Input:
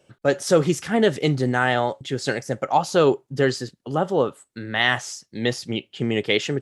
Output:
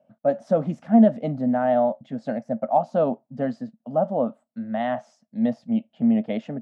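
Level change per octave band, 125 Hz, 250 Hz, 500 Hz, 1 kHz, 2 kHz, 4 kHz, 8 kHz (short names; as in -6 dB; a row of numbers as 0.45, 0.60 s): -6.0 dB, +3.5 dB, -2.0 dB, -1.5 dB, -16.0 dB, under -20 dB, under -25 dB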